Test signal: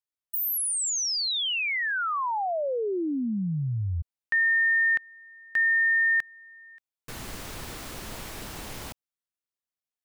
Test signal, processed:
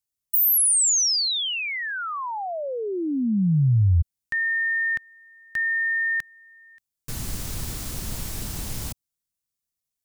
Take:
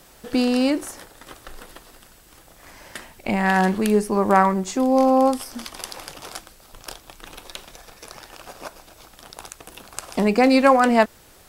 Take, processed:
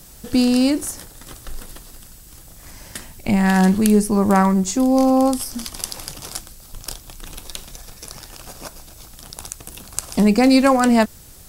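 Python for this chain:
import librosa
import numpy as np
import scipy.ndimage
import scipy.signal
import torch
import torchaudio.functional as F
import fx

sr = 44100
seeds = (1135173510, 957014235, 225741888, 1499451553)

y = fx.bass_treble(x, sr, bass_db=13, treble_db=11)
y = y * librosa.db_to_amplitude(-2.0)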